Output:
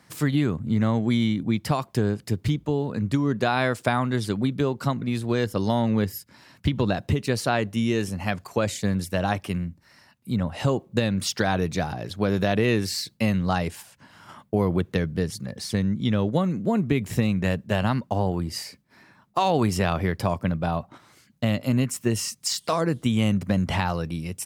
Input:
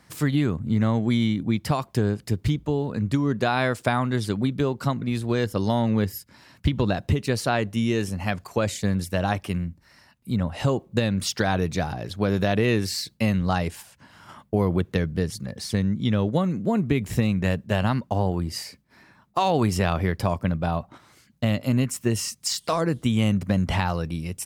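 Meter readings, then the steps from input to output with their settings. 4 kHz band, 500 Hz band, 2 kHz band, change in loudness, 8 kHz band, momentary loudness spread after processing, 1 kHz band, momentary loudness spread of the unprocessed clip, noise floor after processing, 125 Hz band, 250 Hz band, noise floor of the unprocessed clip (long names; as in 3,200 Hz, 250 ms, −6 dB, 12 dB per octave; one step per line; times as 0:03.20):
0.0 dB, 0.0 dB, 0.0 dB, −0.5 dB, 0.0 dB, 6 LU, 0.0 dB, 6 LU, −59 dBFS, −1.0 dB, 0.0 dB, −58 dBFS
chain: high-pass filter 83 Hz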